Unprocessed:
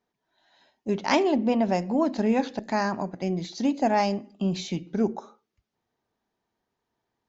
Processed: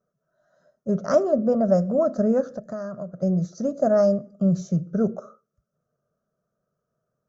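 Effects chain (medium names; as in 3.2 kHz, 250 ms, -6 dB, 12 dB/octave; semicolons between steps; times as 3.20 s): FFT filter 100 Hz 0 dB, 150 Hz +13 dB, 310 Hz -8 dB, 610 Hz +12 dB, 870 Hz -20 dB, 1.3 kHz +10 dB, 2.3 kHz -29 dB, 3.9 kHz -22 dB, 5.9 kHz -2 dB, 10 kHz -9 dB; 2.41–3.23 s: compression 4:1, threshold -31 dBFS, peak gain reduction 11.5 dB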